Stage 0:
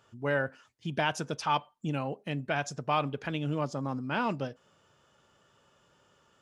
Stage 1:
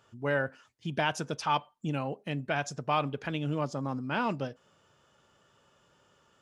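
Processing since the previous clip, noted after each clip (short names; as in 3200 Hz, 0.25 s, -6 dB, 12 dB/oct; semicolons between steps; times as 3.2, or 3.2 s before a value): nothing audible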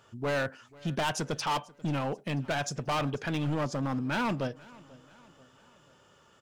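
hard clip -30.5 dBFS, distortion -6 dB; feedback echo 0.488 s, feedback 50%, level -23 dB; gain +4.5 dB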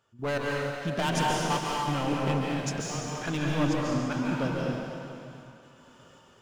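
step gate ".x..xxx.x.xxx" 80 bpm -12 dB; plate-style reverb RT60 2.4 s, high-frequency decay 0.95×, pre-delay 0.12 s, DRR -3.5 dB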